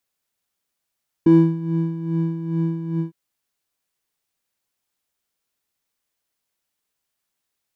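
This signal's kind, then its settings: synth patch with tremolo E4, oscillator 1 square, interval 0 st, oscillator 2 level -17 dB, sub -9 dB, filter bandpass, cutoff 120 Hz, Q 3.2, filter envelope 1 oct, attack 4.7 ms, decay 0.34 s, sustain -11 dB, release 0.13 s, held 1.73 s, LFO 2.4 Hz, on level 9 dB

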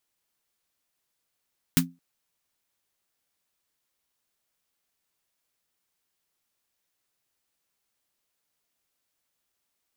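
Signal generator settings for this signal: snare drum length 0.22 s, tones 170 Hz, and 260 Hz, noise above 990 Hz, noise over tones 0 dB, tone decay 0.25 s, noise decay 0.10 s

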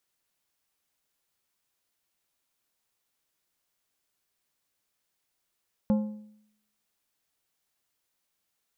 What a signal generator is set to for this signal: metal hit plate, lowest mode 212 Hz, decay 0.72 s, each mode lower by 9.5 dB, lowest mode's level -18.5 dB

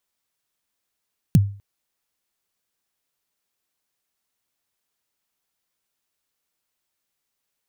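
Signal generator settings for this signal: kick drum length 0.25 s, from 200 Hz, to 100 Hz, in 32 ms, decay 0.40 s, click on, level -7 dB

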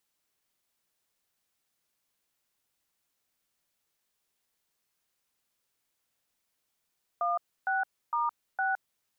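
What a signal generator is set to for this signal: DTMF "16*6", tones 165 ms, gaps 294 ms, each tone -28.5 dBFS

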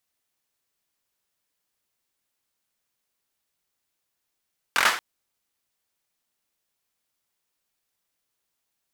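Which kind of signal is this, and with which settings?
hand clap length 0.23 s, bursts 5, apart 23 ms, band 1.4 kHz, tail 0.42 s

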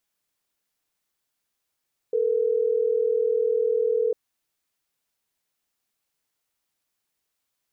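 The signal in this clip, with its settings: call progress tone ringback tone, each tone -22.5 dBFS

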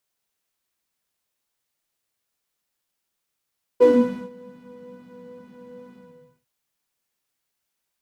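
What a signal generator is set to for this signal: synth patch with pulse-width modulation B4, sub -19.5 dB, noise -2.5 dB, filter bandpass, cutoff 130 Hz, Q 12, filter envelope 1.5 oct, filter decay 0.28 s, attack 25 ms, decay 0.47 s, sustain -23.5 dB, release 0.52 s, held 2.13 s, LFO 2.2 Hz, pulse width 24%, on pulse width 18%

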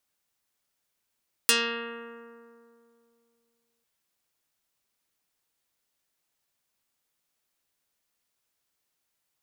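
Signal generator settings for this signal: plucked string A#3, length 2.35 s, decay 2.68 s, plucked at 0.3, dark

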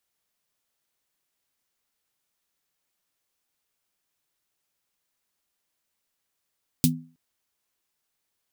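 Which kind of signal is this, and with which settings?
snare drum length 0.32 s, tones 160 Hz, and 250 Hz, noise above 3.1 kHz, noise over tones -1 dB, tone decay 0.38 s, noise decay 0.10 s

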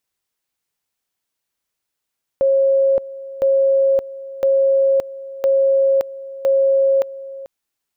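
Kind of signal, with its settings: two-level tone 543 Hz -11.5 dBFS, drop 17.5 dB, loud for 0.57 s, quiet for 0.44 s, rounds 5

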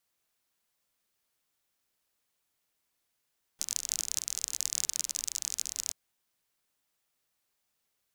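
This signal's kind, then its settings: rain from filtered ticks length 2.33 s, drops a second 39, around 6.5 kHz, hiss -25 dB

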